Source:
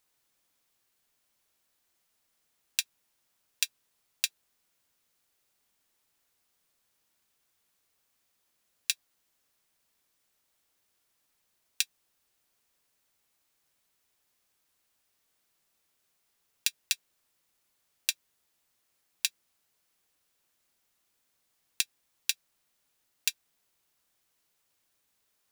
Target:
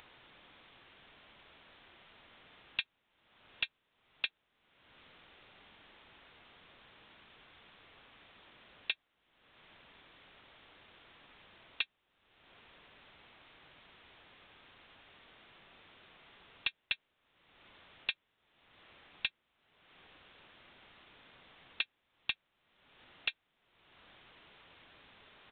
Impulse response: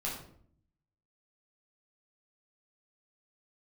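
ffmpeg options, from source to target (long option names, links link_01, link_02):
-af "aresample=8000,asoftclip=type=tanh:threshold=-24dB,aresample=44100,acompressor=mode=upward:threshold=-46dB:ratio=2.5,volume=3dB"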